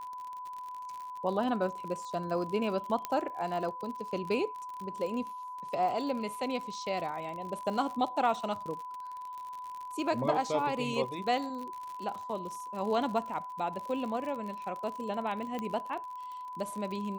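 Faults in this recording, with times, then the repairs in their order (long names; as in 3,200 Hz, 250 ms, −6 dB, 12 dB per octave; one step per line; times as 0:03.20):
surface crackle 57 per second −38 dBFS
whistle 1,000 Hz −39 dBFS
0:03.05: click −17 dBFS
0:15.59: click −23 dBFS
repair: click removal
notch filter 1,000 Hz, Q 30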